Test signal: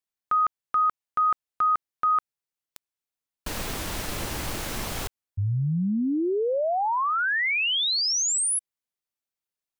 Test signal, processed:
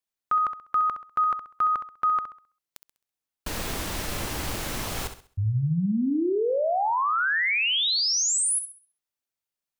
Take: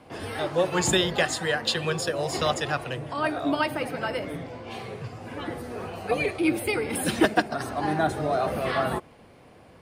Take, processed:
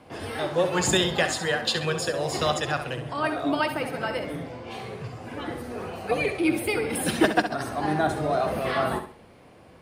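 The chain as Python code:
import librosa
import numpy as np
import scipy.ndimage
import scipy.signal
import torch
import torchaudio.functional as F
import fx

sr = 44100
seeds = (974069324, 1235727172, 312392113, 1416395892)

y = fx.room_flutter(x, sr, wall_m=11.3, rt60_s=0.41)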